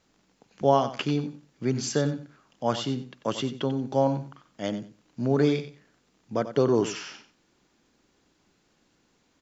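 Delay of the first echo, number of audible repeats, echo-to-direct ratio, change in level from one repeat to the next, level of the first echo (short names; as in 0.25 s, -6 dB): 92 ms, 2, -12.0 dB, -14.5 dB, -12.0 dB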